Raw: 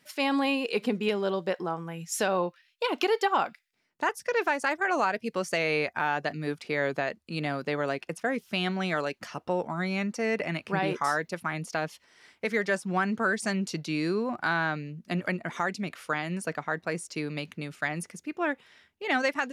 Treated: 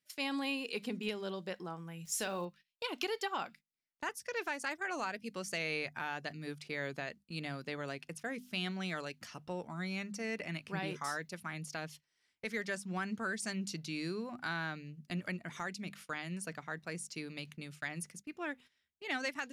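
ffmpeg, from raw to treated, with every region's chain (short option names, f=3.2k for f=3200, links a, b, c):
-filter_complex "[0:a]asettb=1/sr,asplit=3[a][b][c];[a]atrim=end=2.054[d];[b]atrim=start=2.05:end=2.45,asetpts=PTS-STARTPTS,afade=t=in:d=0.004:c=qsin,afade=t=out:st=0.396:d=0.004:c=qsin,asplit=2[e][f];[f]adelay=40,volume=-13.5dB[g];[e][g]amix=inputs=2:normalize=0,atrim=end_sample=17640,aeval=exprs='val(0)*gte(abs(val(0)),0.00376)':c=same[h];[c]atrim=start=2.446[i];[d][h]acrossfade=d=0.004:c1=hsin:c2=qsin[j];[j][i]acrossfade=d=0.004:c1=qsin:c2=hsin,bandreject=f=50:t=h:w=6,bandreject=f=100:t=h:w=6,bandreject=f=150:t=h:w=6,bandreject=f=200:t=h:w=6,bandreject=f=250:t=h:w=6,agate=range=-14dB:threshold=-45dB:ratio=16:detection=peak,equalizer=f=670:w=0.33:g=-10.5,volume=-3dB"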